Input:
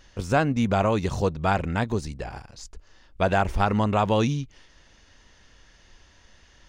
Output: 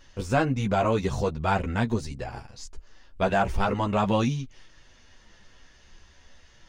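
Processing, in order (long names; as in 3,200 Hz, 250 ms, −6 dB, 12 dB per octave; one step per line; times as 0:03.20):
in parallel at −10 dB: soft clipping −20 dBFS, distortion −11 dB
on the sum: multi-voice chorus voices 6, 0.39 Hz, delay 12 ms, depth 4.1 ms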